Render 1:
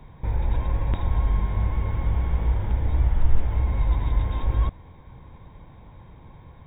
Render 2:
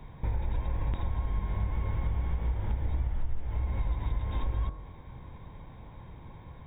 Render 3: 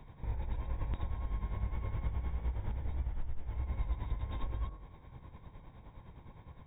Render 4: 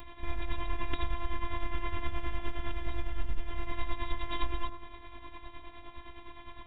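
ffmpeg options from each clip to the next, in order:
ffmpeg -i in.wav -af "bandreject=frequency=45.8:width_type=h:width=4,bandreject=frequency=91.6:width_type=h:width=4,bandreject=frequency=137.4:width_type=h:width=4,bandreject=frequency=183.2:width_type=h:width=4,bandreject=frequency=229:width_type=h:width=4,bandreject=frequency=274.8:width_type=h:width=4,bandreject=frequency=320.6:width_type=h:width=4,bandreject=frequency=366.4:width_type=h:width=4,bandreject=frequency=412.2:width_type=h:width=4,bandreject=frequency=458:width_type=h:width=4,bandreject=frequency=503.8:width_type=h:width=4,bandreject=frequency=549.6:width_type=h:width=4,bandreject=frequency=595.4:width_type=h:width=4,bandreject=frequency=641.2:width_type=h:width=4,bandreject=frequency=687:width_type=h:width=4,bandreject=frequency=732.8:width_type=h:width=4,bandreject=frequency=778.6:width_type=h:width=4,bandreject=frequency=824.4:width_type=h:width=4,bandreject=frequency=870.2:width_type=h:width=4,bandreject=frequency=916:width_type=h:width=4,bandreject=frequency=961.8:width_type=h:width=4,bandreject=frequency=1007.6:width_type=h:width=4,bandreject=frequency=1053.4:width_type=h:width=4,bandreject=frequency=1099.2:width_type=h:width=4,bandreject=frequency=1145:width_type=h:width=4,bandreject=frequency=1190.8:width_type=h:width=4,bandreject=frequency=1236.6:width_type=h:width=4,bandreject=frequency=1282.4:width_type=h:width=4,bandreject=frequency=1328.2:width_type=h:width=4,bandreject=frequency=1374:width_type=h:width=4,bandreject=frequency=1419.8:width_type=h:width=4,bandreject=frequency=1465.6:width_type=h:width=4,bandreject=frequency=1511.4:width_type=h:width=4,bandreject=frequency=1557.2:width_type=h:width=4,bandreject=frequency=1603:width_type=h:width=4,bandreject=frequency=1648.8:width_type=h:width=4,acompressor=threshold=-26dB:ratio=6" out.wav
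ffmpeg -i in.wav -af "tremolo=f=9.7:d=0.6,volume=-3.5dB" out.wav
ffmpeg -i in.wav -af "aresample=8000,aresample=44100,afftfilt=real='hypot(re,im)*cos(PI*b)':imag='0':win_size=512:overlap=0.75,crystalizer=i=8:c=0,volume=9.5dB" out.wav

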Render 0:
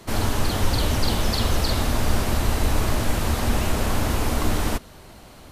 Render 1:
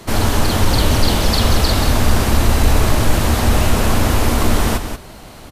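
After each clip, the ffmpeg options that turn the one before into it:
ffmpeg -i in.wav -filter_complex "[0:a]acontrast=48,asplit=2[link_01][link_02];[link_02]aecho=0:1:183:0.376[link_03];[link_01][link_03]amix=inputs=2:normalize=0,volume=1.5dB" out.wav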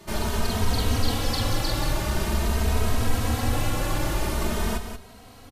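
ffmpeg -i in.wav -filter_complex "[0:a]asplit=2[link_01][link_02];[link_02]adelay=2.9,afreqshift=0.46[link_03];[link_01][link_03]amix=inputs=2:normalize=1,volume=-7dB" out.wav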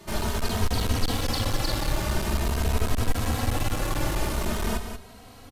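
ffmpeg -i in.wav -af "aeval=exprs='clip(val(0),-1,0.0596)':channel_layout=same" out.wav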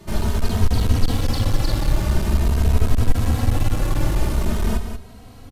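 ffmpeg -i in.wav -af "lowshelf=frequency=310:gain=10,volume=-1dB" out.wav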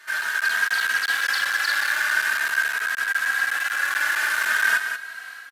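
ffmpeg -i in.wav -af "dynaudnorm=framelen=310:gausssize=3:maxgain=11.5dB,highpass=frequency=1600:width_type=q:width=15" out.wav

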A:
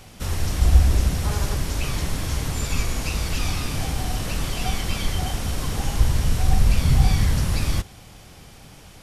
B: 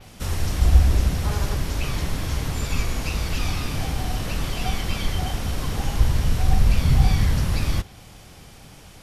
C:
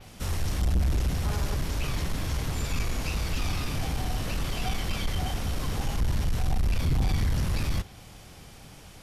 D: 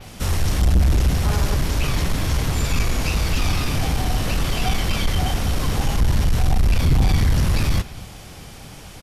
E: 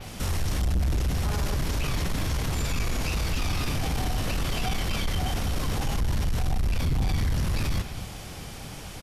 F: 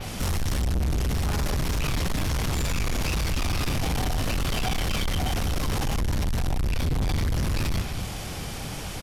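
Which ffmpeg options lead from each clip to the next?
ffmpeg -i in.wav -af "adynamicequalizer=threshold=0.00398:dfrequency=8600:dqfactor=0.91:tfrequency=8600:tqfactor=0.91:attack=5:release=100:ratio=0.375:range=2.5:mode=cutabove:tftype=bell" out.wav
ffmpeg -i in.wav -af "asoftclip=type=tanh:threshold=-17.5dB,volume=-2.5dB" out.wav
ffmpeg -i in.wav -af "aecho=1:1:235:0.112,volume=8.5dB" out.wav
ffmpeg -i in.wav -af "alimiter=limit=-20.5dB:level=0:latency=1:release=32" out.wav
ffmpeg -i in.wav -af "asoftclip=type=tanh:threshold=-28dB,volume=6dB" out.wav

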